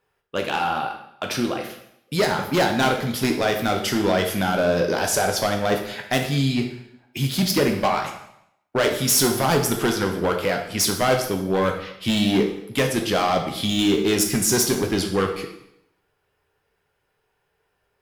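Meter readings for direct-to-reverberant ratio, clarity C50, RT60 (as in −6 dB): 3.0 dB, 7.0 dB, 0.75 s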